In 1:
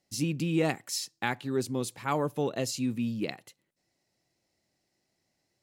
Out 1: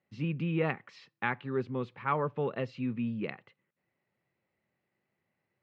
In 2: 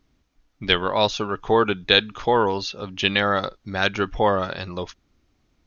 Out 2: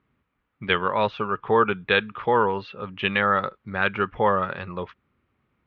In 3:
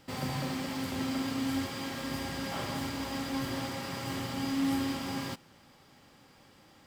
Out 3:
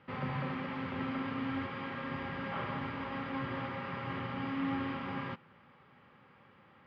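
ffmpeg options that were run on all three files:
-af "highpass=100,equalizer=frequency=300:width_type=q:width=4:gain=-9,equalizer=frequency=690:width_type=q:width=4:gain=-7,equalizer=frequency=1200:width_type=q:width=4:gain=4,lowpass=frequency=2600:width=0.5412,lowpass=frequency=2600:width=1.3066"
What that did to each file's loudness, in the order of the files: −2.5, −1.5, −3.5 LU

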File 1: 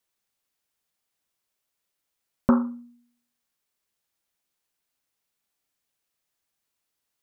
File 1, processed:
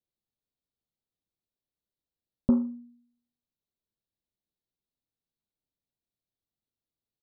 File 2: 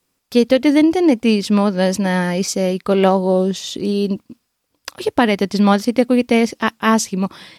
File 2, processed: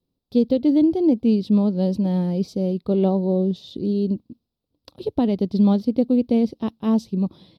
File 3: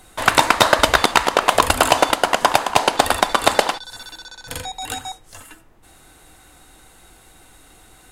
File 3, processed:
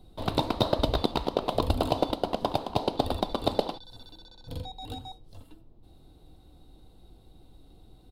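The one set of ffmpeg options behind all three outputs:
-af "firequalizer=gain_entry='entry(100,0);entry(1700,-30);entry(3900,-10);entry(6700,-30);entry(15000,-18)':delay=0.05:min_phase=1"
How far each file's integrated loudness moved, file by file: −3.0, −4.5, −13.0 LU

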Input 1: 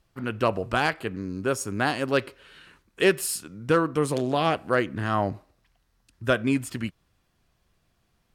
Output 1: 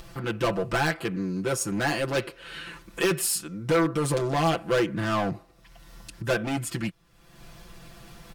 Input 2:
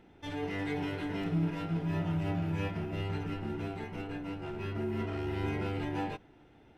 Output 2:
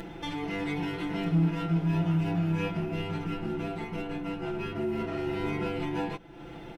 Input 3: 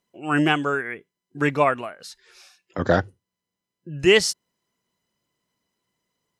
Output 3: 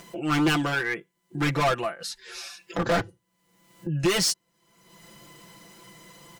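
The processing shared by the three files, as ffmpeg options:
-af "volume=24dB,asoftclip=hard,volume=-24dB,acompressor=mode=upward:threshold=-33dB:ratio=2.5,aecho=1:1:5.9:0.91,volume=1dB"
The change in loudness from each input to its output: −0.5, +4.5, −4.5 LU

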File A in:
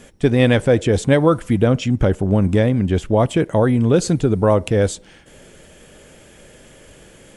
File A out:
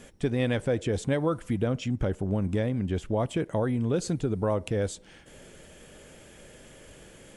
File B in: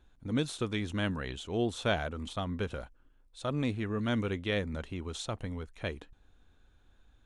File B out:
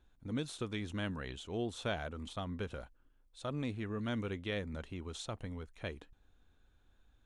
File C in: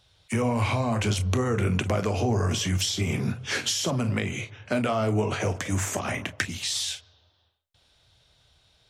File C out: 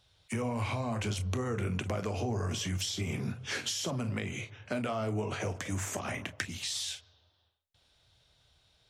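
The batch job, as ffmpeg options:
-af "acompressor=threshold=-30dB:ratio=1.5,volume=-5dB"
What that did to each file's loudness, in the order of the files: −11.5, −6.0, −8.0 LU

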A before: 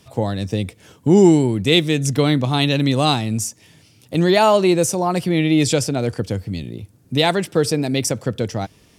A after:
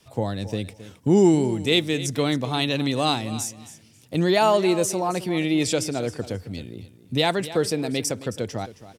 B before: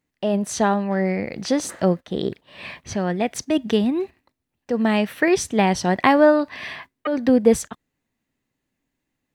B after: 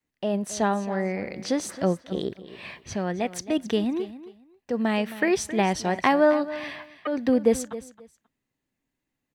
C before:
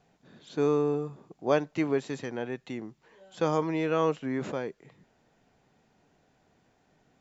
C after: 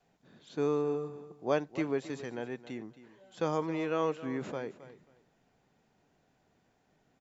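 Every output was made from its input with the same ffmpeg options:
-filter_complex "[0:a]adynamicequalizer=threshold=0.02:dfrequency=140:dqfactor=1.1:tfrequency=140:tqfactor=1.1:attack=5:release=100:ratio=0.375:range=3:mode=cutabove:tftype=bell,asplit=2[link_01][link_02];[link_02]aecho=0:1:268|536:0.178|0.0356[link_03];[link_01][link_03]amix=inputs=2:normalize=0,volume=-4.5dB"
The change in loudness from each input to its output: −5.0, −5.0, −4.5 LU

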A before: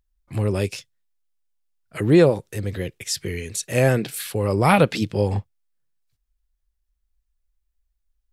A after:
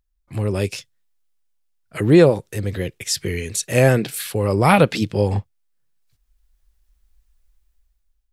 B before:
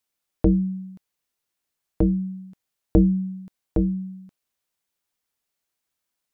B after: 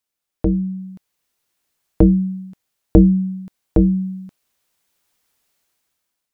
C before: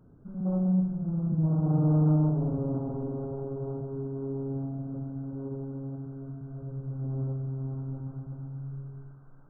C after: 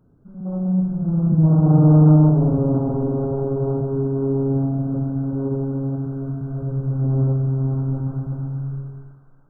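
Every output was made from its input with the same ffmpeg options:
-af "dynaudnorm=framelen=250:gausssize=7:maxgain=14dB,volume=-1dB"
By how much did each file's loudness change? +2.5, +6.0, +11.0 LU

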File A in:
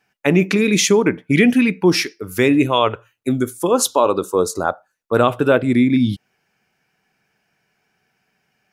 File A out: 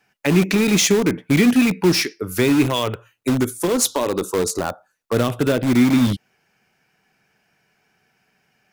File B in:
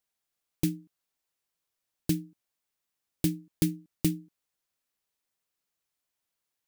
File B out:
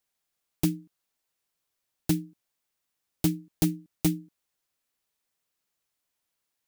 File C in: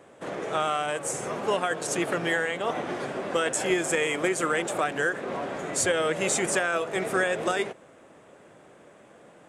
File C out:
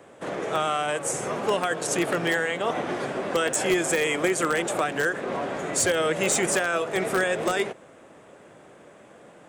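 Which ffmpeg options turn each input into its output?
-filter_complex "[0:a]acrossover=split=370|3000[link_01][link_02][link_03];[link_02]acompressor=threshold=-24dB:ratio=5[link_04];[link_01][link_04][link_03]amix=inputs=3:normalize=0,asplit=2[link_05][link_06];[link_06]aeval=exprs='(mod(6.68*val(0)+1,2)-1)/6.68':channel_layout=same,volume=-8.5dB[link_07];[link_05][link_07]amix=inputs=2:normalize=0"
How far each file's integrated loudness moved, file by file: −1.5, +2.0, +2.0 LU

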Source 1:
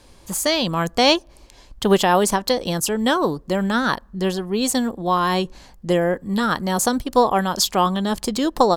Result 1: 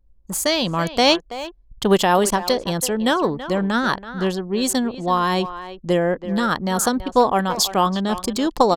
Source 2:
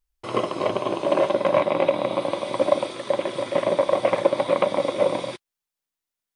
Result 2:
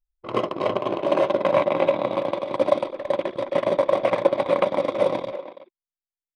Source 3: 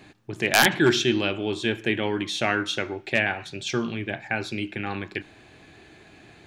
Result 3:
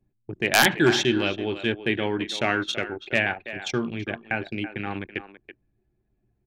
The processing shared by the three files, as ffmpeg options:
-filter_complex "[0:a]anlmdn=39.8,asplit=2[link_01][link_02];[link_02]adelay=330,highpass=300,lowpass=3400,asoftclip=type=hard:threshold=-11dB,volume=-12dB[link_03];[link_01][link_03]amix=inputs=2:normalize=0"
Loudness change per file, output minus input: 0.0, 0.0, 0.0 LU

